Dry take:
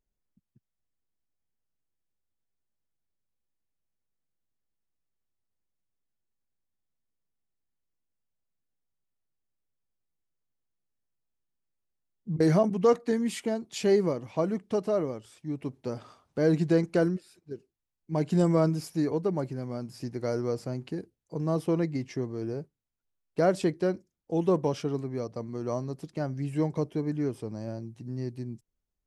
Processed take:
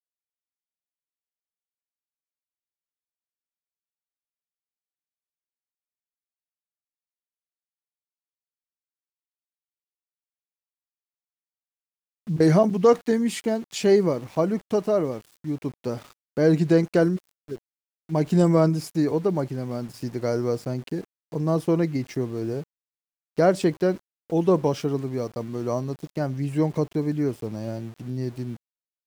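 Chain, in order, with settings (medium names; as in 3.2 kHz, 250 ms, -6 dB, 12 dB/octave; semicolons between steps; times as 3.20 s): small samples zeroed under -48 dBFS; trim +5 dB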